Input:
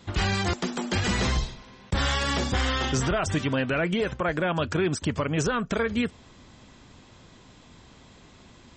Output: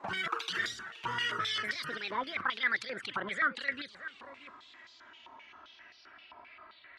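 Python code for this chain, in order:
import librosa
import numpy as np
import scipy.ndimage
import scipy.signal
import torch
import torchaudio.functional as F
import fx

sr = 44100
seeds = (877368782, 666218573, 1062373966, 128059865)

p1 = fx.speed_glide(x, sr, from_pct=196, to_pct=55)
p2 = fx.high_shelf(p1, sr, hz=3100.0, db=-9.5)
p3 = fx.over_compress(p2, sr, threshold_db=-33.0, ratio=-1.0)
p4 = p2 + (p3 * 10.0 ** (-1.5 / 20.0))
p5 = fx.env_flanger(p4, sr, rest_ms=3.7, full_db=-17.5)
p6 = p5 + fx.echo_single(p5, sr, ms=628, db=-16.5, dry=0)
p7 = fx.filter_held_bandpass(p6, sr, hz=7.6, low_hz=990.0, high_hz=4500.0)
y = p7 * 10.0 ** (7.5 / 20.0)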